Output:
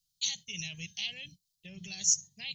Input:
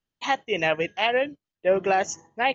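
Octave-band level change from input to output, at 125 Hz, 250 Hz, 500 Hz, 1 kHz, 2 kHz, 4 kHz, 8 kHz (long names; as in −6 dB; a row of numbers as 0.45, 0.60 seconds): −7.0 dB, −16.0 dB, −38.5 dB, −39.0 dB, −16.5 dB, −2.5 dB, can't be measured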